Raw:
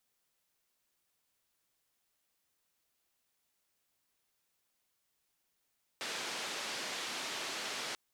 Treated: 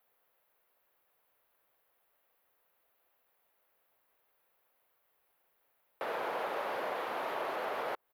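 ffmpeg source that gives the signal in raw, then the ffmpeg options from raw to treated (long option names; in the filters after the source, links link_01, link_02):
-f lavfi -i "anoisesrc=color=white:duration=1.94:sample_rate=44100:seed=1,highpass=frequency=240,lowpass=frequency=4900,volume=-28.7dB"
-filter_complex "[0:a]firequalizer=gain_entry='entry(240,0);entry(500,13);entry(5500,-11);entry(7900,-14);entry(12000,6)':delay=0.05:min_phase=1,acrossover=split=1300[link_01][link_02];[link_02]alimiter=level_in=15.5dB:limit=-24dB:level=0:latency=1:release=175,volume=-15.5dB[link_03];[link_01][link_03]amix=inputs=2:normalize=0"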